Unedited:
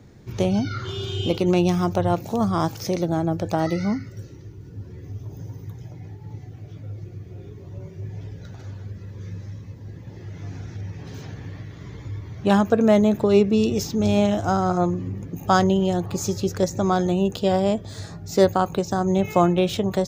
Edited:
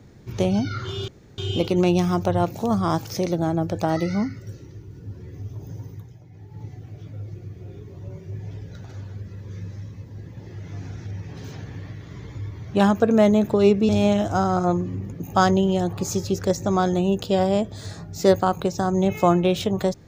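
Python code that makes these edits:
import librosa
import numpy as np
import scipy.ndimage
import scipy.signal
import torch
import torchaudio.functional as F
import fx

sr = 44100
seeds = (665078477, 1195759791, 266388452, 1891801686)

y = fx.edit(x, sr, fx.insert_room_tone(at_s=1.08, length_s=0.3),
    fx.fade_down_up(start_s=5.56, length_s=0.76, db=-8.5, fade_s=0.3),
    fx.cut(start_s=13.59, length_s=0.43), tone=tone)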